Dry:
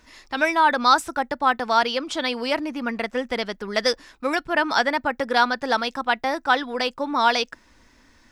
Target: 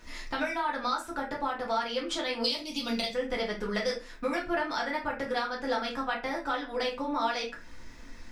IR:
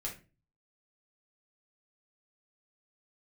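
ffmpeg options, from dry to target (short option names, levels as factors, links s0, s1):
-filter_complex "[0:a]asettb=1/sr,asplit=3[s0][s1][s2];[s0]atrim=end=2.444[s3];[s1]atrim=start=2.44:end=3.14,asetpts=PTS-STARTPTS,afade=t=in:d=0.004:c=qsin,afade=t=out:st=0.696:d=0.004:c=qsin,highshelf=f=2600:t=q:w=3:g=14[s4];[s2]atrim=start=3.136[s5];[s3][s4]acrossfade=d=0.004:c1=hsin:c2=qsin[s6];[s6][s5]acrossfade=d=0.004:c1=qsin:c2=hsin,acompressor=threshold=0.0224:ratio=5[s7];[1:a]atrim=start_sample=2205[s8];[s7][s8]afir=irnorm=-1:irlink=0,volume=1.58"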